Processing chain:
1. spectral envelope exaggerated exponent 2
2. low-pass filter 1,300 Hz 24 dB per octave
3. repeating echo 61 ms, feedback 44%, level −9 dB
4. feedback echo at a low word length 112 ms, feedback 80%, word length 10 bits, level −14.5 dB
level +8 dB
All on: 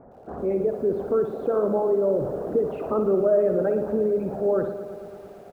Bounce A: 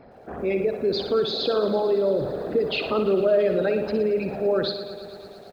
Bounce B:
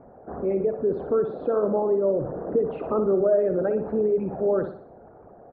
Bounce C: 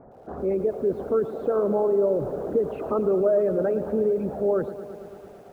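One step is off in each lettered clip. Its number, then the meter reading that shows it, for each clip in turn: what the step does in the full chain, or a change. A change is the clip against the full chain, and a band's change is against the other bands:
2, change in momentary loudness spread −2 LU
4, change in momentary loudness spread −8 LU
3, change in momentary loudness spread −2 LU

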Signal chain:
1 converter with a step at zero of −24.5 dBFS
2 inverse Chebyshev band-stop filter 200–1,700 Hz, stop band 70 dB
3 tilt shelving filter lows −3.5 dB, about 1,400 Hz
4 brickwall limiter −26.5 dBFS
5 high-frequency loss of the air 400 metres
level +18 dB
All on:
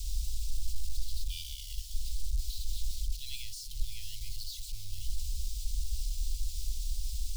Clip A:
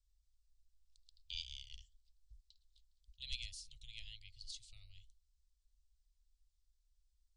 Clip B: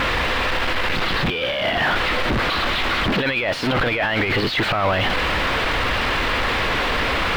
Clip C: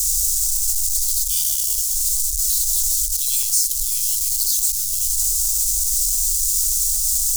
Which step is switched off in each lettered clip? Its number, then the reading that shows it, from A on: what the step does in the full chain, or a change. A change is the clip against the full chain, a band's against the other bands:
1, change in crest factor +17.0 dB
2, 2 kHz band +26.5 dB
5, change in momentary loudness spread −2 LU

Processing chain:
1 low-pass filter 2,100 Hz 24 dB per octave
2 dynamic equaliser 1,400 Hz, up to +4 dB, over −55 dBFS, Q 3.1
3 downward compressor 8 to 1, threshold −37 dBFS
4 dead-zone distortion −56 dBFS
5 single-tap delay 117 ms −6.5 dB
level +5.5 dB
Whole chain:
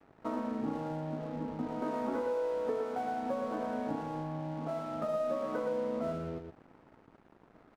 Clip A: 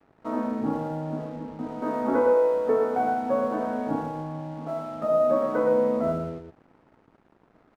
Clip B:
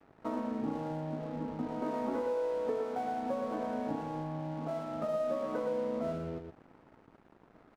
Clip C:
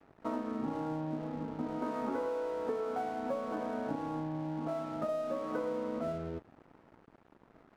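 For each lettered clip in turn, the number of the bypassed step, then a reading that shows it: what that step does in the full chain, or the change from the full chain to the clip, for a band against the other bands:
3, average gain reduction 5.5 dB
2, 2 kHz band −2.0 dB
5, change in momentary loudness spread −2 LU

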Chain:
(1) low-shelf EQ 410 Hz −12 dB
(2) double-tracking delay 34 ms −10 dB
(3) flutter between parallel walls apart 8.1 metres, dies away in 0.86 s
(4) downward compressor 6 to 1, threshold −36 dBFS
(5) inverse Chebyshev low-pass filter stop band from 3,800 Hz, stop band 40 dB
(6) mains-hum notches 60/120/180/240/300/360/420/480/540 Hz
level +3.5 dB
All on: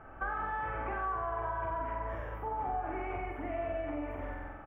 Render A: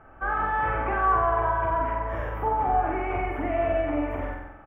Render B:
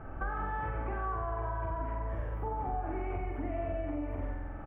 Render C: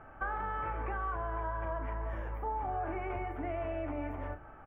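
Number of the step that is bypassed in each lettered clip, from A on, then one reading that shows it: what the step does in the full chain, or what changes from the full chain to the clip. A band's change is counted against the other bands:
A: 4, average gain reduction 9.0 dB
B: 1, 125 Hz band +8.0 dB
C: 3, 125 Hz band +4.5 dB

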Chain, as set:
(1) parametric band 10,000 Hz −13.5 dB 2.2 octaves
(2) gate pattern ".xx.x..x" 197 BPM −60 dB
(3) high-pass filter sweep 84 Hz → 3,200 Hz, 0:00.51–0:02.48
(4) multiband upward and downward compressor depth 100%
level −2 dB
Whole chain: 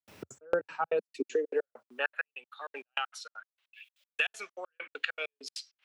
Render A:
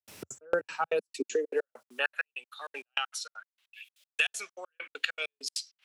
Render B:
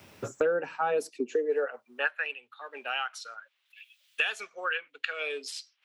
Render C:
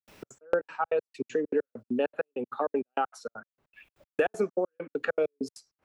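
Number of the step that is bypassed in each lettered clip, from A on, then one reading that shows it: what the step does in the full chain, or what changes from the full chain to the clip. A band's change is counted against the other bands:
1, 8 kHz band +9.0 dB
2, change in crest factor −3.0 dB
3, 4 kHz band −15.5 dB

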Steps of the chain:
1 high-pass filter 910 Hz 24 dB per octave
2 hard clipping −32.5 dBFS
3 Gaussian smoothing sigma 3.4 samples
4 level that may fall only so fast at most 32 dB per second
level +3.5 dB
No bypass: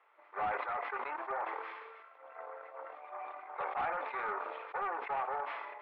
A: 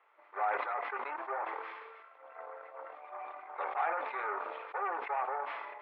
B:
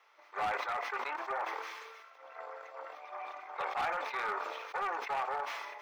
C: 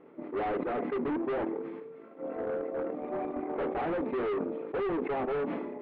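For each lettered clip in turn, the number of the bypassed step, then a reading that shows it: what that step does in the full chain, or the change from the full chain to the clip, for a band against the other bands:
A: 2, distortion level −14 dB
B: 3, 4 kHz band +10.0 dB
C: 1, 250 Hz band +26.0 dB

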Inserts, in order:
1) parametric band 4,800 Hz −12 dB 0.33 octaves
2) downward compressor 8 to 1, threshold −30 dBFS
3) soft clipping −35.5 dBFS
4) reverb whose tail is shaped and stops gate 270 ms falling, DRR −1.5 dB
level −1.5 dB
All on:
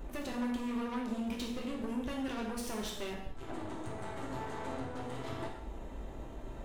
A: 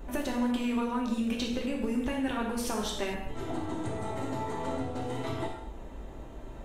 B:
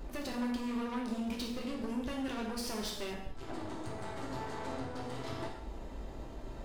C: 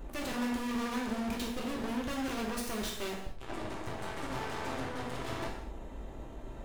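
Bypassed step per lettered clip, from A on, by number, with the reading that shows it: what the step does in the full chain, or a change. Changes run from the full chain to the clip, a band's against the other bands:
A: 3, distortion level −10 dB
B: 1, 4 kHz band +2.5 dB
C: 2, average gain reduction 10.5 dB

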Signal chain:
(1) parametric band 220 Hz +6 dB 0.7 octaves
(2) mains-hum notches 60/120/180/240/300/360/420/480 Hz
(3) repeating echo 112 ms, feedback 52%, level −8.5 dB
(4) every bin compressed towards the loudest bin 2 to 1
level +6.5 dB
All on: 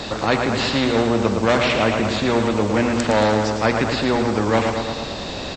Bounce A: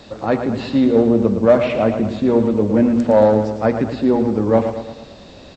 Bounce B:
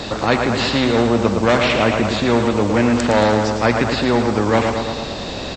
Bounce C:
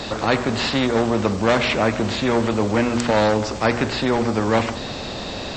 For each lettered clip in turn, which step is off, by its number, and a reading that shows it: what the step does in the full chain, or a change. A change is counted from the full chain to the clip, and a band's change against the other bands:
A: 4, 4 kHz band −12.5 dB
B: 2, change in crest factor −2.5 dB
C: 3, change in momentary loudness spread +2 LU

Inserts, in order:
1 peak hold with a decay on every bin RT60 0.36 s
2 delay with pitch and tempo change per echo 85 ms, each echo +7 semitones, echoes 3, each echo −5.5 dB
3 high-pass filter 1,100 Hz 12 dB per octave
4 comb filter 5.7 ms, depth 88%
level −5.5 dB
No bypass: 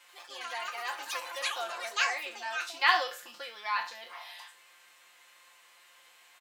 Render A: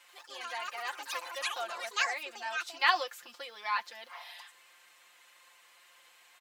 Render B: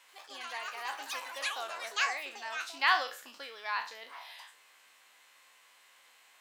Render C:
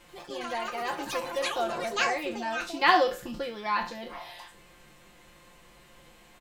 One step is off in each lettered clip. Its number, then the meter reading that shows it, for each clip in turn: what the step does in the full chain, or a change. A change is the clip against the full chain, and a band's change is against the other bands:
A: 1, change in integrated loudness −2.0 LU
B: 4, 250 Hz band +2.5 dB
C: 3, 250 Hz band +22.0 dB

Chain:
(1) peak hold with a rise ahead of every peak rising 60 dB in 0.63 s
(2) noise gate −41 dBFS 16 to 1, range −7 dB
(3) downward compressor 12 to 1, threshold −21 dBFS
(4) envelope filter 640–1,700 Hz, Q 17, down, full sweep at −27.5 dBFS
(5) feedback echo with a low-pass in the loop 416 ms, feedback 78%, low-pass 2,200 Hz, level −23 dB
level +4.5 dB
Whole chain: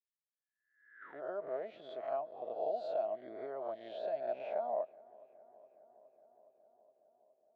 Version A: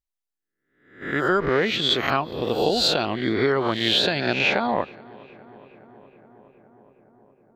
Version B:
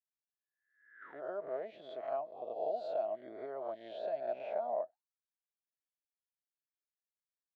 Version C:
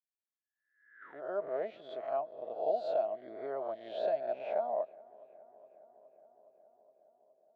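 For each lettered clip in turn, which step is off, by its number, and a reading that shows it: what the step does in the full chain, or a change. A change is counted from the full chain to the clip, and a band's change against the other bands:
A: 4, change in crest factor +4.0 dB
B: 5, echo-to-direct ratio −22.0 dB to none audible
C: 3, average gain reduction 2.5 dB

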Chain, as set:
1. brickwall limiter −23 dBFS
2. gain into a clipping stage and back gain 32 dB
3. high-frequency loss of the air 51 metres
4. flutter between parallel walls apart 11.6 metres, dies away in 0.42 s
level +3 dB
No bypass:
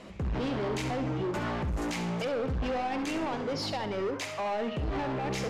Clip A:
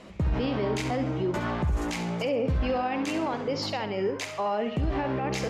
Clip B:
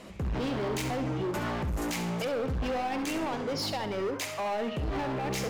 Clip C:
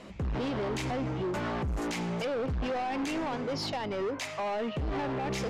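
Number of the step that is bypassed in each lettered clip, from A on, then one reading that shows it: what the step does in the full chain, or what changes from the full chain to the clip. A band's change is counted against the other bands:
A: 2, distortion level −9 dB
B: 3, 8 kHz band +4.0 dB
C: 4, echo-to-direct ratio −9.0 dB to none audible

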